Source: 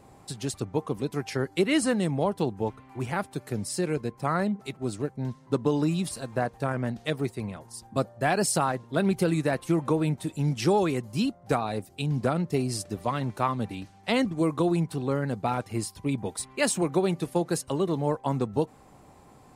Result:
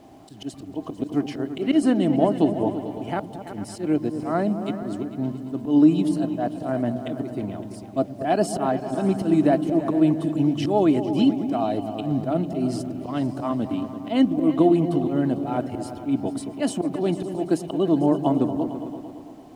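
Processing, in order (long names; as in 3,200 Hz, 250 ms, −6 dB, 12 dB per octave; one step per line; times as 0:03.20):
hollow resonant body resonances 300/650/3,000 Hz, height 16 dB, ringing for 35 ms
volume swells 110 ms
on a send: echo whose low-pass opens from repeat to repeat 112 ms, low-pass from 200 Hz, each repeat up 2 octaves, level −6 dB
on the sum: bit reduction 9 bits
high-shelf EQ 6,900 Hz −8.5 dB
level −3 dB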